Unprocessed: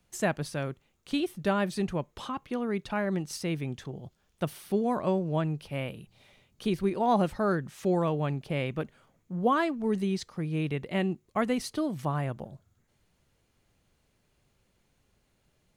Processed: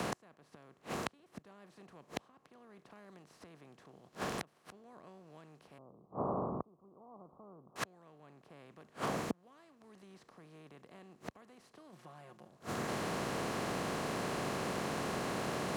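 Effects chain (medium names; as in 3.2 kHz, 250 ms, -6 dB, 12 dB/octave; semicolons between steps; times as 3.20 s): spectral levelling over time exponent 0.4; inverted gate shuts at -21 dBFS, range -42 dB; 5.78–7.76 s: steep low-pass 1.2 kHz 72 dB/octave; 11.92–12.48 s: comb 5.6 ms, depth 74%; high-pass 60 Hz; three bands compressed up and down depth 40%; trim +1 dB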